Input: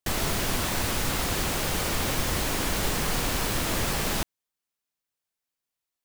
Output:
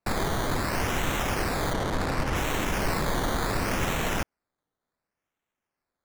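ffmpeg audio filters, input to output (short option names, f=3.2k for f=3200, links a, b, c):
-filter_complex "[0:a]acrusher=samples=13:mix=1:aa=0.000001:lfo=1:lforange=7.8:lforate=0.69,asettb=1/sr,asplit=3[a][b][c];[a]atrim=end=1.734[d];[b]atrim=start=1.73:end=2.36,asetpts=PTS-STARTPTS,afade=t=in:d=0.004:c=qsin,afade=t=out:st=0.626:d=0.004:c=qsin,adynamicsmooth=sensitivity=6.5:basefreq=650[e];[c]atrim=start=2.356[f];[d][e]acrossfade=d=0.004:c1=hsin:c2=qsin[g];[g][f]acrossfade=d=0.004:c1=qsin:c2=hsin"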